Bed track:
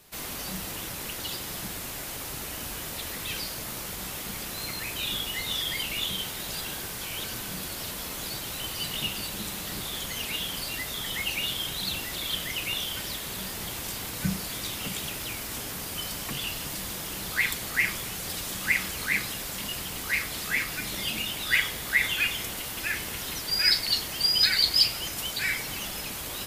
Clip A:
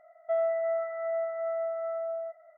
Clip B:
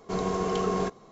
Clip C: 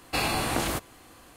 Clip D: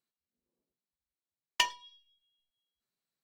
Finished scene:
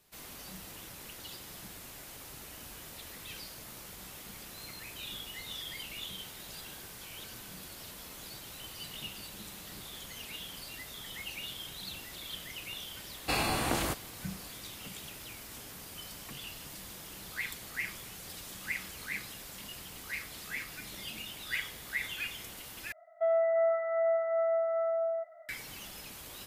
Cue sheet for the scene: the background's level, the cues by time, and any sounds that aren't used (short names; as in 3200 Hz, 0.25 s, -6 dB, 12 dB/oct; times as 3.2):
bed track -11.5 dB
13.15 add C -3.5 dB
22.92 replace with A -1.5 dB + AGC gain up to 4 dB
not used: B, D